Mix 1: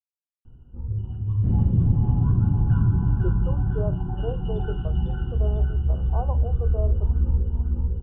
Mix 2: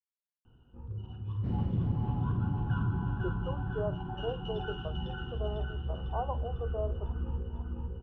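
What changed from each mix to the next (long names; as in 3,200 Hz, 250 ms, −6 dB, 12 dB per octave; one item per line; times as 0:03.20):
master: add spectral tilt +3.5 dB per octave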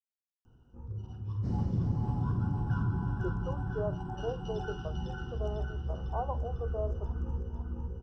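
master: add high shelf with overshoot 4,100 Hz +10.5 dB, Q 3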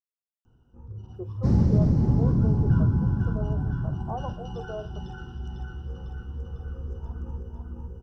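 speech: entry −2.05 s
second sound +12.0 dB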